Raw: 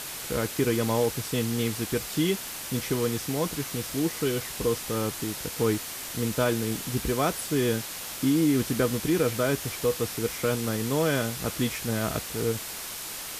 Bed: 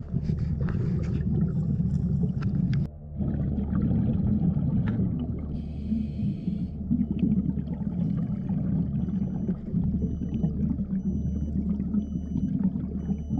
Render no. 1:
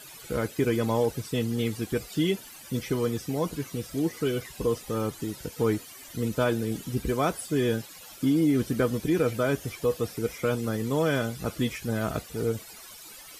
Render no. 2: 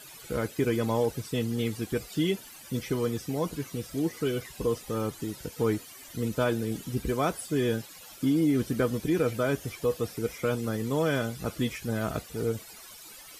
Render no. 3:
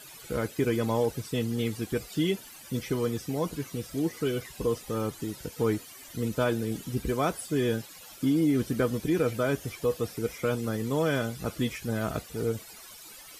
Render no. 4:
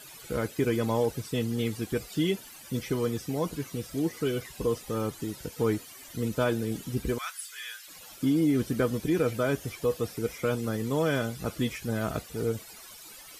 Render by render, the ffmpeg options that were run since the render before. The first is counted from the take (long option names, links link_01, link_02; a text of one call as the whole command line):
ffmpeg -i in.wav -af "afftdn=noise_reduction=15:noise_floor=-37" out.wav
ffmpeg -i in.wav -af "volume=-1.5dB" out.wav
ffmpeg -i in.wav -af anull out.wav
ffmpeg -i in.wav -filter_complex "[0:a]asettb=1/sr,asplit=3[link_01][link_02][link_03];[link_01]atrim=end=7.184[link_04];[link_02]atrim=start=7.18:end=7.88,asetpts=PTS-STARTPTS,afade=type=in:duration=0.004:curve=qsin,afade=type=out:start_time=0.696:duration=0.004:curve=qsin,highpass=frequency=1400:width=0.5412,highpass=frequency=1400:width=1.3066[link_05];[link_03]atrim=start=7.876[link_06];[link_04][link_05]acrossfade=duration=0.004:curve1=hsin:curve2=qsin[link_07];[link_07][link_06]acrossfade=duration=0.004:curve1=qsin:curve2=hsin" out.wav